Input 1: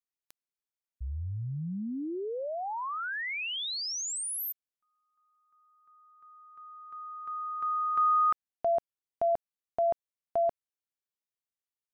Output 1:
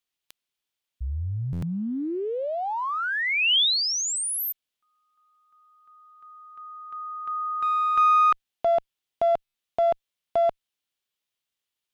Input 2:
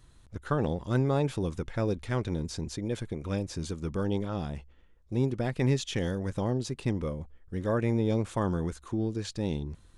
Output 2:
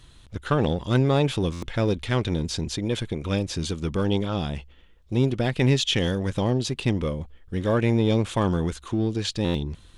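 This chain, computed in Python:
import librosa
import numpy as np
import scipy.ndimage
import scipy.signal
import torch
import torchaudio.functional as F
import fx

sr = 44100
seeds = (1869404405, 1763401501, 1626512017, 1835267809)

p1 = fx.clip_asym(x, sr, top_db=-32.5, bottom_db=-18.0)
p2 = x + (p1 * librosa.db_to_amplitude(-9.0))
p3 = fx.peak_eq(p2, sr, hz=3200.0, db=9.0, octaves=0.93)
p4 = fx.buffer_glitch(p3, sr, at_s=(1.52, 9.44), block=512, repeats=8)
y = p4 * librosa.db_to_amplitude(3.5)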